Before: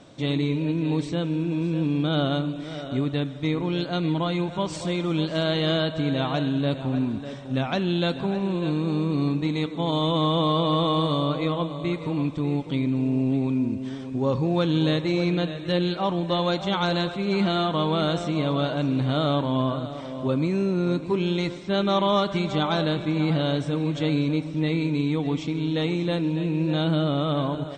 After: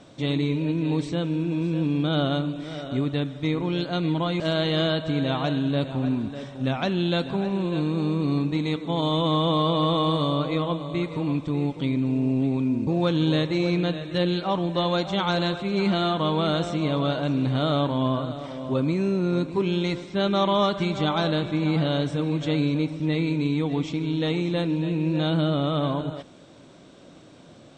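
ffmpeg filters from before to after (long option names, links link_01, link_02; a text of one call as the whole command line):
ffmpeg -i in.wav -filter_complex "[0:a]asplit=3[link_01][link_02][link_03];[link_01]atrim=end=4.402[link_04];[link_02]atrim=start=5.298:end=13.772[link_05];[link_03]atrim=start=14.408[link_06];[link_04][link_05]acrossfade=duration=0.004:curve1=hsin:curve2=hsin[link_07];[link_07][link_06]acrossfade=duration=0.004:curve1=hsin:curve2=hsin" out.wav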